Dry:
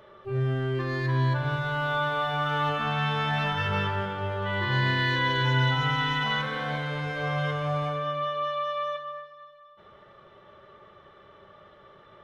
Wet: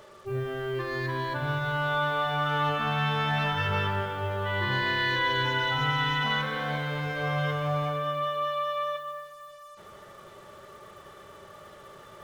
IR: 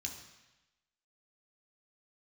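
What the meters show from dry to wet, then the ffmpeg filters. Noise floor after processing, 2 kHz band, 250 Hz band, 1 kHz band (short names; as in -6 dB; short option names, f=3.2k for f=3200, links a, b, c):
-50 dBFS, 0.0 dB, -2.0 dB, 0.0 dB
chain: -af "bandreject=f=65.21:t=h:w=4,bandreject=f=130.42:t=h:w=4,bandreject=f=195.63:t=h:w=4,bandreject=f=260.84:t=h:w=4,bandreject=f=326.05:t=h:w=4,areverse,acompressor=mode=upward:threshold=-41dB:ratio=2.5,areverse,acrusher=bits=8:mix=0:aa=0.5"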